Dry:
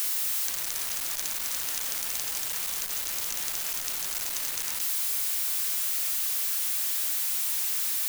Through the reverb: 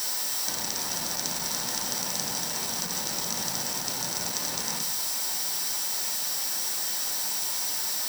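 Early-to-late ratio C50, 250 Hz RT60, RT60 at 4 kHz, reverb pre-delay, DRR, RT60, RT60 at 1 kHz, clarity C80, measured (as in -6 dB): 10.5 dB, 0.75 s, 0.40 s, 3 ms, 3.0 dB, 0.45 s, 0.40 s, 16.0 dB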